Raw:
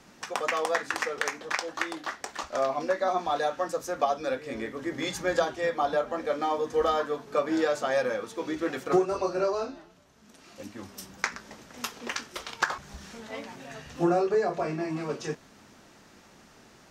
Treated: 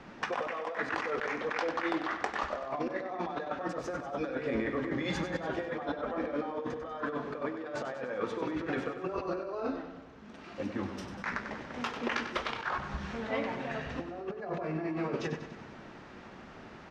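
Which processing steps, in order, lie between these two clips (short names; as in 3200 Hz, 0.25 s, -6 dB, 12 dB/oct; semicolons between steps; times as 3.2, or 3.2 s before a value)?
LPF 2600 Hz 12 dB/oct; negative-ratio compressor -36 dBFS, ratio -1; on a send: feedback echo 96 ms, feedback 59%, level -9.5 dB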